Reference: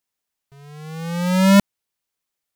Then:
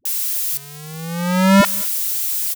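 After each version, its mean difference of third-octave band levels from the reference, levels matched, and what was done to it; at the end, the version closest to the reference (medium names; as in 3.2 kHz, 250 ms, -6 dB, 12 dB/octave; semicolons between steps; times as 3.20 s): 4.5 dB: zero-crossing glitches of -17.5 dBFS; dynamic bell 1.3 kHz, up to +6 dB, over -33 dBFS, Q 0.76; phase dispersion highs, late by 54 ms, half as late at 350 Hz; on a send: delay 201 ms -24 dB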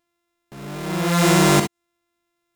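12.0 dB: sorted samples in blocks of 128 samples; gated-style reverb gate 80 ms rising, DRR 7 dB; dynamic bell 7.6 kHz, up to +6 dB, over -39 dBFS, Q 0.93; compression 16:1, threshold -20 dBFS, peak gain reduction 13 dB; trim +7 dB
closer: first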